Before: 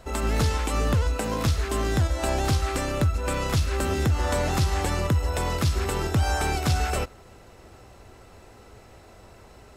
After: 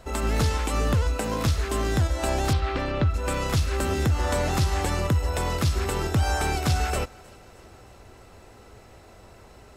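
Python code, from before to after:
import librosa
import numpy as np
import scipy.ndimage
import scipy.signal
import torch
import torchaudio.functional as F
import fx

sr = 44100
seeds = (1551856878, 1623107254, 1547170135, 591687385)

y = fx.lowpass(x, sr, hz=4200.0, slope=24, at=(2.53, 3.14))
y = fx.echo_thinned(y, sr, ms=310, feedback_pct=59, hz=420.0, wet_db=-24.0)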